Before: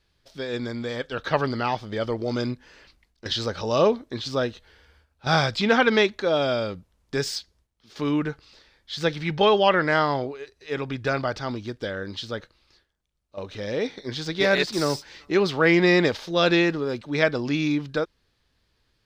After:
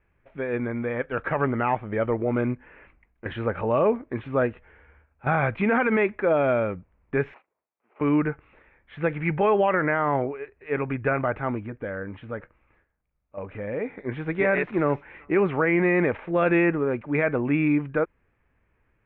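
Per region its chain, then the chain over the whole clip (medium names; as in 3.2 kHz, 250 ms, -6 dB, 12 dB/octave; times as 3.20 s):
7.34–8.01 s: median filter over 25 samples + high-pass 650 Hz
11.59–13.99 s: treble shelf 4 kHz -8 dB + band-stop 370 Hz, Q 8.4 + compression 1.5:1, threshold -35 dBFS
whole clip: elliptic low-pass 2.4 kHz, stop band 50 dB; peak limiter -16 dBFS; trim +3 dB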